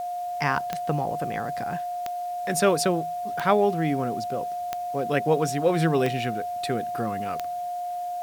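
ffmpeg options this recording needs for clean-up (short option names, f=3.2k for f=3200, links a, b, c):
-af "adeclick=t=4,bandreject=f=710:w=30,agate=range=-21dB:threshold=-23dB"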